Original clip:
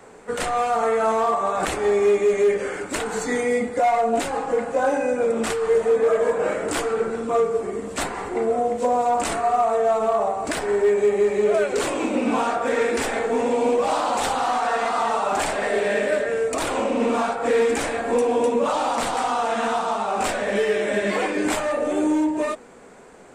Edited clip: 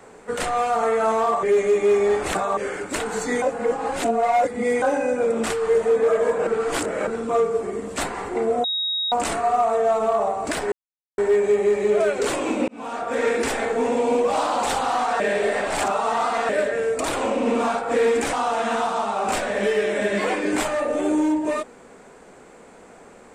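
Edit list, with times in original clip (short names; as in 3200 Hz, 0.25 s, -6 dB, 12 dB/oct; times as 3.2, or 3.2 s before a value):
1.43–2.57 reverse
3.42–4.82 reverse
6.47–7.07 reverse
8.64–9.12 bleep 3780 Hz -21.5 dBFS
10.72 insert silence 0.46 s
12.22–12.79 fade in
14.74–16.03 reverse
17.87–19.25 cut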